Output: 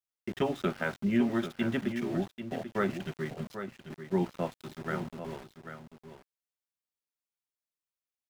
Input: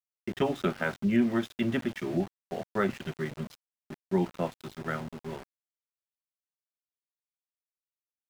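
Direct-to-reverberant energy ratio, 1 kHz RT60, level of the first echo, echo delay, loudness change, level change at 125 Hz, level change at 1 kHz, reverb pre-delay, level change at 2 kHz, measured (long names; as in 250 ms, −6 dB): no reverb audible, no reverb audible, −9.5 dB, 790 ms, −2.0 dB, −1.5 dB, −1.5 dB, no reverb audible, −1.5 dB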